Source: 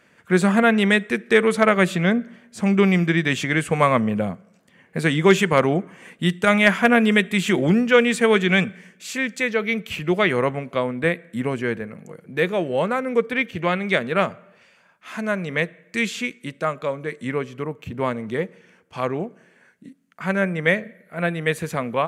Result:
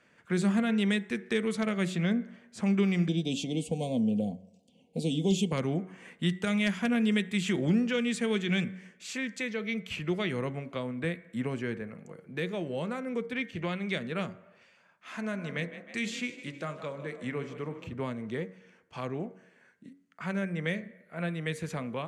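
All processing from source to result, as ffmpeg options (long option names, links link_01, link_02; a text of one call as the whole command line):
ffmpeg -i in.wav -filter_complex "[0:a]asettb=1/sr,asplit=3[link_01][link_02][link_03];[link_01]atrim=end=3.084[link_04];[link_02]atrim=start=3.08:end=5.52,asetpts=PTS-STARTPTS,afade=type=in:duration=0.004:curve=qsin,afade=type=out:start_time=2.436:duration=0.004:curve=qsin,asuperstop=centerf=1500:order=8:qfactor=0.73,aecho=1:1:4.1:0.48,atrim=end_sample=107604[link_05];[link_03]atrim=start=5.516[link_06];[link_04][link_05]acrossfade=duration=0.004:curve1=hsin:curve2=qsin[link_07];[link_07][link_06]acrossfade=duration=0.004:curve1=qsin:curve2=hsin,asettb=1/sr,asplit=3[link_08][link_09][link_10];[link_08]atrim=end=15.134[link_11];[link_09]atrim=start=15.13:end=17.94,asetpts=PTS-STARTPTS,afade=type=in:duration=0.004:curve=qsin,afade=type=out:start_time=2.806:duration=0.004:curve=qsin,bandreject=frequency=45.01:width_type=h:width=4,bandreject=frequency=90.02:width_type=h:width=4,bandreject=frequency=135.03:width_type=h:width=4,bandreject=frequency=180.04:width_type=h:width=4,bandreject=frequency=225.05:width_type=h:width=4,bandreject=frequency=270.06:width_type=h:width=4,bandreject=frequency=315.07:width_type=h:width=4,bandreject=frequency=360.08:width_type=h:width=4,bandreject=frequency=405.09:width_type=h:width=4,bandreject=frequency=450.1:width_type=h:width=4,bandreject=frequency=495.11:width_type=h:width=4,bandreject=frequency=540.12:width_type=h:width=4,bandreject=frequency=585.13:width_type=h:width=4,bandreject=frequency=630.14:width_type=h:width=4,bandreject=frequency=675.15:width_type=h:width=4,bandreject=frequency=720.16:width_type=h:width=4,bandreject=frequency=765.17:width_type=h:width=4,bandreject=frequency=810.18:width_type=h:width=4,bandreject=frequency=855.19:width_type=h:width=4,bandreject=frequency=900.2:width_type=h:width=4,bandreject=frequency=945.21:width_type=h:width=4,bandreject=frequency=990.22:width_type=h:width=4,bandreject=frequency=1035.23:width_type=h:width=4,bandreject=frequency=1080.24:width_type=h:width=4,bandreject=frequency=1125.25:width_type=h:width=4,bandreject=frequency=1170.26:width_type=h:width=4,bandreject=frequency=1215.27:width_type=h:width=4,bandreject=frequency=1260.28:width_type=h:width=4,bandreject=frequency=1305.29:width_type=h:width=4,bandreject=frequency=1350.3:width_type=h:width=4,bandreject=frequency=1395.31:width_type=h:width=4,bandreject=frequency=1440.32:width_type=h:width=4,bandreject=frequency=1485.33:width_type=h:width=4,bandreject=frequency=1530.34:width_type=h:width=4,bandreject=frequency=1575.35:width_type=h:width=4,asplit=6[link_12][link_13][link_14][link_15][link_16][link_17];[link_13]adelay=154,afreqshift=30,volume=-15.5dB[link_18];[link_14]adelay=308,afreqshift=60,volume=-21.3dB[link_19];[link_15]adelay=462,afreqshift=90,volume=-27.2dB[link_20];[link_16]adelay=616,afreqshift=120,volume=-33dB[link_21];[link_17]adelay=770,afreqshift=150,volume=-38.9dB[link_22];[link_12][link_18][link_19][link_20][link_21][link_22]amix=inputs=6:normalize=0,atrim=end_sample=123921[link_23];[link_10]atrim=start=17.936[link_24];[link_11][link_23]acrossfade=duration=0.004:curve1=hsin:curve2=qsin[link_25];[link_25][link_24]acrossfade=duration=0.004:curve1=qsin:curve2=hsin,lowpass=8500,acrossover=split=330|3000[link_26][link_27][link_28];[link_27]acompressor=threshold=-30dB:ratio=4[link_29];[link_26][link_29][link_28]amix=inputs=3:normalize=0,bandreject=frequency=93.23:width_type=h:width=4,bandreject=frequency=186.46:width_type=h:width=4,bandreject=frequency=279.69:width_type=h:width=4,bandreject=frequency=372.92:width_type=h:width=4,bandreject=frequency=466.15:width_type=h:width=4,bandreject=frequency=559.38:width_type=h:width=4,bandreject=frequency=652.61:width_type=h:width=4,bandreject=frequency=745.84:width_type=h:width=4,bandreject=frequency=839.07:width_type=h:width=4,bandreject=frequency=932.3:width_type=h:width=4,bandreject=frequency=1025.53:width_type=h:width=4,bandreject=frequency=1118.76:width_type=h:width=4,bandreject=frequency=1211.99:width_type=h:width=4,bandreject=frequency=1305.22:width_type=h:width=4,bandreject=frequency=1398.45:width_type=h:width=4,bandreject=frequency=1491.68:width_type=h:width=4,bandreject=frequency=1584.91:width_type=h:width=4,bandreject=frequency=1678.14:width_type=h:width=4,bandreject=frequency=1771.37:width_type=h:width=4,bandreject=frequency=1864.6:width_type=h:width=4,bandreject=frequency=1957.83:width_type=h:width=4,bandreject=frequency=2051.06:width_type=h:width=4,bandreject=frequency=2144.29:width_type=h:width=4,bandreject=frequency=2237.52:width_type=h:width=4,volume=-6.5dB" out.wav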